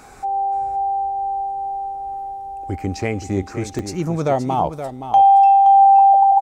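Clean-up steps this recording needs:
repair the gap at 0:03.79, 1.6 ms
echo removal 522 ms −10 dB

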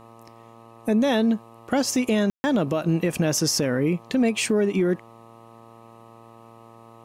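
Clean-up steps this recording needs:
hum removal 114.7 Hz, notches 11
ambience match 0:02.30–0:02.44

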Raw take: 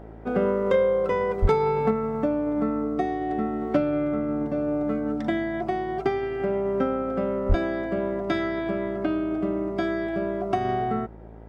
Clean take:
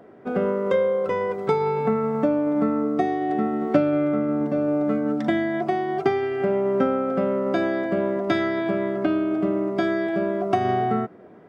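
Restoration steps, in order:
clipped peaks rebuilt −12 dBFS
hum removal 55 Hz, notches 17
0:01.41–0:01.53: high-pass filter 140 Hz 24 dB per octave
0:07.48–0:07.60: high-pass filter 140 Hz 24 dB per octave
level 0 dB, from 0:01.91 +3.5 dB

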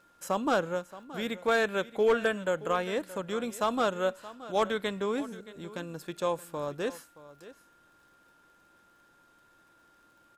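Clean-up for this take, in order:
clipped peaks rebuilt −18 dBFS
click removal
notch filter 1,400 Hz, Q 30
echo removal 624 ms −17 dB

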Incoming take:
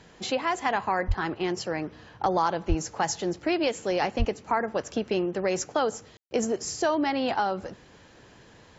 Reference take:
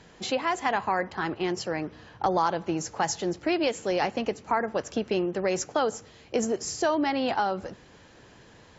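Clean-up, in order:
0:01.07–0:01.19: high-pass filter 140 Hz 24 dB per octave
0:02.68–0:02.80: high-pass filter 140 Hz 24 dB per octave
0:04.18–0:04.30: high-pass filter 140 Hz 24 dB per octave
ambience match 0:06.17–0:06.31

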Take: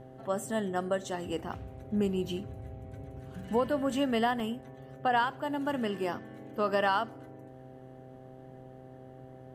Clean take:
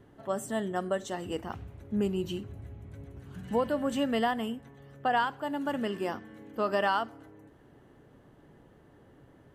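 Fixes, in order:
hum removal 129.8 Hz, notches 6
repair the gap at 0:03.43/0:04.40, 2.9 ms

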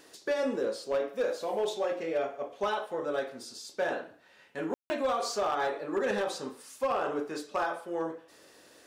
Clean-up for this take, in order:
clipped peaks rebuilt −23 dBFS
ambience match 0:04.74–0:04.90

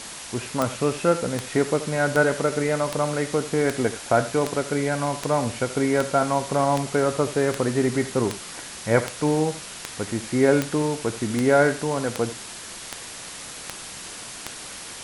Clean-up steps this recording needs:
click removal
noise reduction from a noise print 30 dB
echo removal 78 ms −14.5 dB

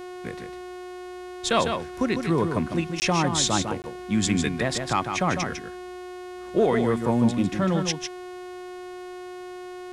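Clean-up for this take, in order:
click removal
hum removal 362.7 Hz, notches 34
repair the gap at 0:03.00/0:03.82, 19 ms
echo removal 152 ms −6.5 dB

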